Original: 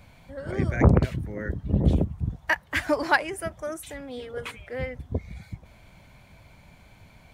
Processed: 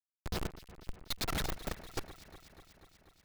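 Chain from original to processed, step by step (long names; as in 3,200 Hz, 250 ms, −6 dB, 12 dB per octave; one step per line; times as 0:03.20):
first difference
change of speed 2.26×
comparator with hysteresis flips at −39 dBFS
delay that swaps between a low-pass and a high-pass 122 ms, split 2,300 Hz, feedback 84%, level −14 dB
level +14 dB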